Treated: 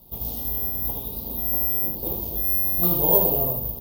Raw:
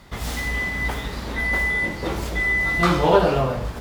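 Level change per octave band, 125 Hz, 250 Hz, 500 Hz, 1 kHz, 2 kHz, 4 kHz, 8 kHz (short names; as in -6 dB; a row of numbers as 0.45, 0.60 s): -6.5 dB, -6.5 dB, -7.0 dB, -11.0 dB, under -30 dB, -11.5 dB, -4.5 dB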